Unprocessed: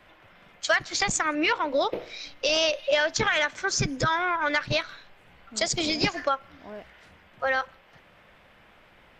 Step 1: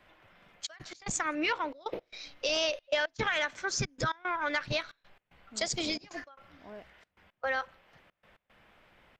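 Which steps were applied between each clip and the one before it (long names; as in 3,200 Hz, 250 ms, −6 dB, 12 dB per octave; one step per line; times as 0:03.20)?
gate pattern "xxxxx.x." 113 BPM −24 dB
level −6 dB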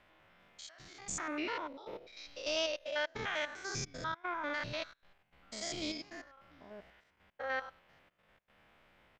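spectrum averaged block by block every 100 ms
level −3 dB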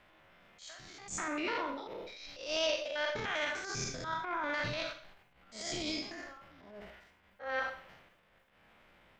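four-comb reverb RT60 0.47 s, combs from 32 ms, DRR 8 dB
transient designer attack −12 dB, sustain +6 dB
level +2.5 dB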